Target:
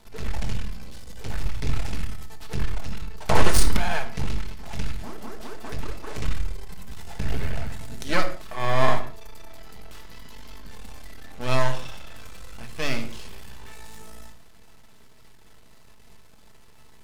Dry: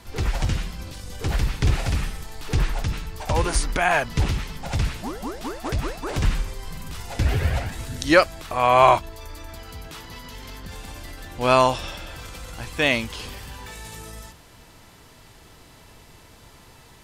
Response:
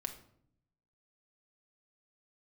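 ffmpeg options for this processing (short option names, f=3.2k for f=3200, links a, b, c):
-filter_complex "[0:a]asplit=3[a][b][c];[a]afade=t=out:st=3.27:d=0.02[d];[b]aeval=exprs='0.376*(cos(1*acos(clip(val(0)/0.376,-1,1)))-cos(1*PI/2))+0.188*(cos(6*acos(clip(val(0)/0.376,-1,1)))-cos(6*PI/2))':c=same,afade=t=in:st=3.27:d=0.02,afade=t=out:st=3.76:d=0.02[e];[c]afade=t=in:st=3.76:d=0.02[f];[d][e][f]amix=inputs=3:normalize=0,aeval=exprs='max(val(0),0)':c=same[g];[1:a]atrim=start_sample=2205,afade=t=out:st=0.24:d=0.01,atrim=end_sample=11025[h];[g][h]afir=irnorm=-1:irlink=0,volume=-2.5dB"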